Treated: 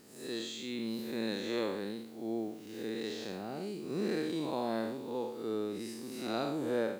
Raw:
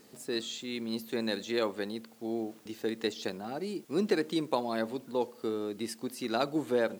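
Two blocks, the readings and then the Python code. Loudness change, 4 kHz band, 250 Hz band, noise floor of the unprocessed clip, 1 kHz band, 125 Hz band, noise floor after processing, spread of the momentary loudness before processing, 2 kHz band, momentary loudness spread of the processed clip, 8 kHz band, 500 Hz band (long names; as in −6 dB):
−3.0 dB, −4.0 dB, −2.5 dB, −56 dBFS, −4.0 dB, −1.5 dB, −49 dBFS, 8 LU, −4.5 dB, 7 LU, −4.0 dB, −3.5 dB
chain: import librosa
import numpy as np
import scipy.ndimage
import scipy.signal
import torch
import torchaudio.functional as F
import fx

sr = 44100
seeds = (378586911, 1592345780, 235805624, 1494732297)

y = fx.spec_blur(x, sr, span_ms=173.0)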